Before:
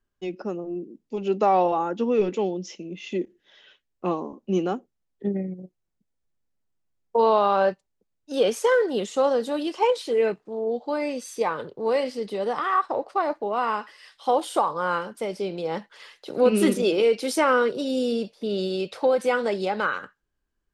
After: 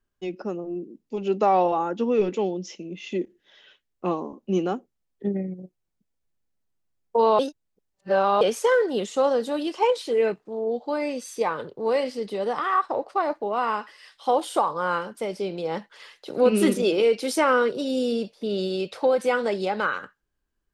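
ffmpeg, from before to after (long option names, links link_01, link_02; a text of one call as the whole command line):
ffmpeg -i in.wav -filter_complex "[0:a]asplit=3[link_01][link_02][link_03];[link_01]atrim=end=7.392[link_04];[link_02]atrim=start=7.388:end=8.412,asetpts=PTS-STARTPTS,areverse[link_05];[link_03]atrim=start=8.408[link_06];[link_04][link_05]acrossfade=duration=0.004:curve1=hsin:curve2=hsin[link_07];[link_07][link_06]acrossfade=duration=0.004:curve1=hsin:curve2=hsin" out.wav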